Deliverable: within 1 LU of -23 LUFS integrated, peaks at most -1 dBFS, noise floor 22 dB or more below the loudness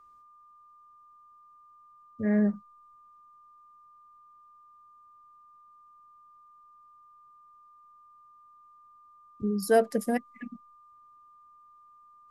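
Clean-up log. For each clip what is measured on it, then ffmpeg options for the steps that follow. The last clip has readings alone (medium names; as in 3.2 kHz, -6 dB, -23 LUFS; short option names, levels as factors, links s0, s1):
steady tone 1.2 kHz; tone level -54 dBFS; loudness -28.5 LUFS; peak level -12.0 dBFS; loudness target -23.0 LUFS
-> -af "bandreject=f=1200:w=30"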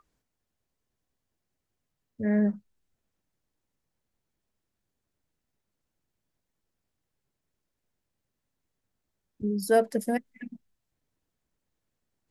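steady tone not found; loudness -27.5 LUFS; peak level -11.5 dBFS; loudness target -23.0 LUFS
-> -af "volume=1.68"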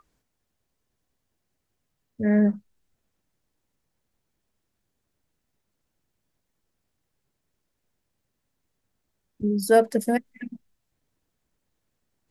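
loudness -23.0 LUFS; peak level -7.0 dBFS; noise floor -79 dBFS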